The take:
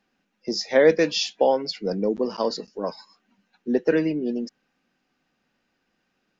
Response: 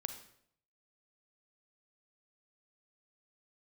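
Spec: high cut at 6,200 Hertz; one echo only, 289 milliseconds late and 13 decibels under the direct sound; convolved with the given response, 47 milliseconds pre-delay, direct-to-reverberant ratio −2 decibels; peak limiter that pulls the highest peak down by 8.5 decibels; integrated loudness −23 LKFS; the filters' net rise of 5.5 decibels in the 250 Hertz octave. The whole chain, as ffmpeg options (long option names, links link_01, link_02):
-filter_complex "[0:a]lowpass=6200,equalizer=frequency=250:width_type=o:gain=7,alimiter=limit=-11.5dB:level=0:latency=1,aecho=1:1:289:0.224,asplit=2[link_01][link_02];[1:a]atrim=start_sample=2205,adelay=47[link_03];[link_02][link_03]afir=irnorm=-1:irlink=0,volume=3dB[link_04];[link_01][link_04]amix=inputs=2:normalize=0,volume=-4dB"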